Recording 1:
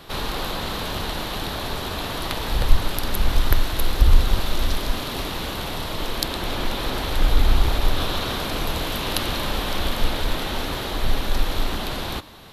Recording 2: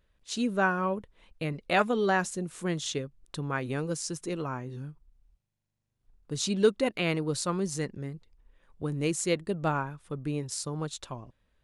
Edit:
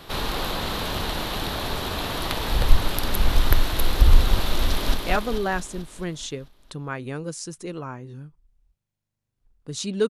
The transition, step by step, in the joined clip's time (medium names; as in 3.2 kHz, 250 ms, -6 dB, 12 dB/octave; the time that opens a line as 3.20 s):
recording 1
4.65–4.94 s: echo throw 220 ms, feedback 60%, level -4 dB
4.94 s: go over to recording 2 from 1.57 s